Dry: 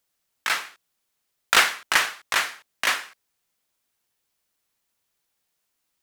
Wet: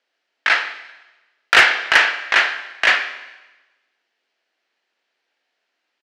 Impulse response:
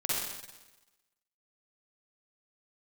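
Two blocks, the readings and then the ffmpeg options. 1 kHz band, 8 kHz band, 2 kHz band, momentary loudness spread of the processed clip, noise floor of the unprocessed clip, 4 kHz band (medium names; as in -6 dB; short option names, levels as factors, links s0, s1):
+5.0 dB, -4.5 dB, +9.0 dB, 11 LU, -77 dBFS, +5.0 dB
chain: -filter_complex "[0:a]highpass=f=280:w=0.5412,highpass=f=280:w=1.3066,equalizer=f=670:t=q:w=4:g=3,equalizer=f=1100:t=q:w=4:g=-5,equalizer=f=1700:t=q:w=4:g=4,equalizer=f=3600:t=q:w=4:g=-5,lowpass=f=3700:w=0.5412,lowpass=f=3700:w=1.3066,crystalizer=i=2:c=0,asplit=2[s0][s1];[s1]adelay=25,volume=0.224[s2];[s0][s2]amix=inputs=2:normalize=0,asplit=2[s3][s4];[1:a]atrim=start_sample=2205,lowshelf=f=180:g=6[s5];[s4][s5]afir=irnorm=-1:irlink=0,volume=0.133[s6];[s3][s6]amix=inputs=2:normalize=0,acontrast=84,volume=0.891"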